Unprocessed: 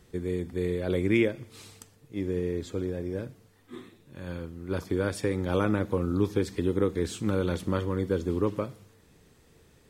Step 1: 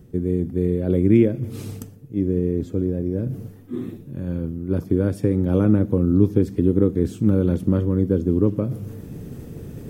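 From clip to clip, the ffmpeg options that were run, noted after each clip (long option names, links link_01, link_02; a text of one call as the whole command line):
ffmpeg -i in.wav -af "equalizer=frequency=125:width_type=o:width=1:gain=8,equalizer=frequency=250:width_type=o:width=1:gain=6,equalizer=frequency=1000:width_type=o:width=1:gain=-8,equalizer=frequency=2000:width_type=o:width=1:gain=-8,equalizer=frequency=4000:width_type=o:width=1:gain=-11,equalizer=frequency=8000:width_type=o:width=1:gain=-9,areverse,acompressor=mode=upward:threshold=-25dB:ratio=2.5,areverse,volume=4.5dB" out.wav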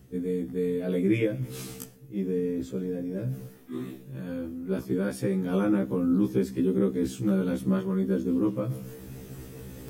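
ffmpeg -i in.wav -af "tiltshelf=frequency=750:gain=-5.5,afftfilt=real='re*1.73*eq(mod(b,3),0)':imag='im*1.73*eq(mod(b,3),0)':win_size=2048:overlap=0.75" out.wav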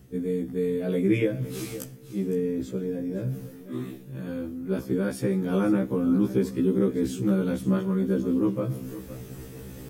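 ffmpeg -i in.wav -af "aecho=1:1:513:0.188,volume=1.5dB" out.wav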